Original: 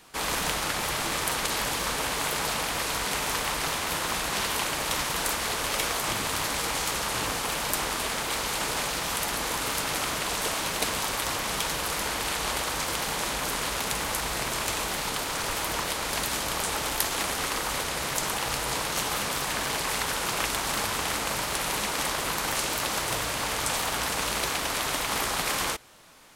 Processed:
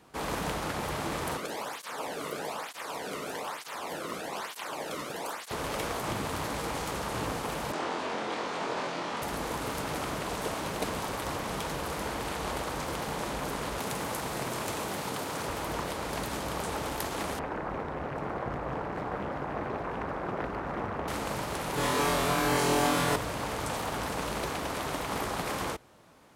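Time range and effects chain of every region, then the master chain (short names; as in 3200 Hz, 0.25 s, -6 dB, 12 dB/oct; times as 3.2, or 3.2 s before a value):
1.37–5.51 low shelf 69 Hz -12 dB + tape flanging out of phase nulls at 1.1 Hz, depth 1.3 ms
7.72–9.22 BPF 230–7000 Hz + air absorption 51 m + flutter echo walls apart 4 m, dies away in 0.29 s
13.78–15.46 HPF 92 Hz + high shelf 6000 Hz +4.5 dB
17.39–21.08 polynomial smoothing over 41 samples + Doppler distortion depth 0.94 ms
21.75–23.16 comb 6.9 ms, depth 72% + flutter echo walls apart 4 m, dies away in 0.93 s
whole clip: HPF 55 Hz; tilt shelf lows +7 dB, about 1300 Hz; gain -5 dB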